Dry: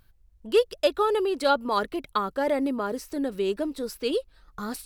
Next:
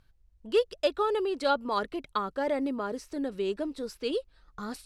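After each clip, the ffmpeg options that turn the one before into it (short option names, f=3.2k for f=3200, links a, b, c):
-af "lowpass=8.2k,volume=-4dB"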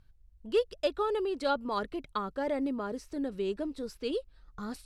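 -af "lowshelf=f=210:g=8,volume=-4dB"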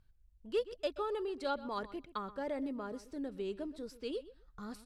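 -filter_complex "[0:a]asplit=2[a][b];[b]adelay=127,lowpass=f=4.2k:p=1,volume=-16dB,asplit=2[c][d];[d]adelay=127,lowpass=f=4.2k:p=1,volume=0.15[e];[a][c][e]amix=inputs=3:normalize=0,volume=-6.5dB"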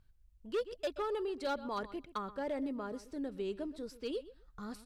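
-af "asoftclip=type=hard:threshold=-30.5dB,volume=1dB"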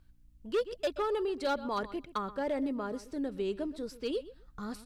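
-af "aeval=exprs='val(0)+0.000282*(sin(2*PI*60*n/s)+sin(2*PI*2*60*n/s)/2+sin(2*PI*3*60*n/s)/3+sin(2*PI*4*60*n/s)/4+sin(2*PI*5*60*n/s)/5)':c=same,volume=4.5dB"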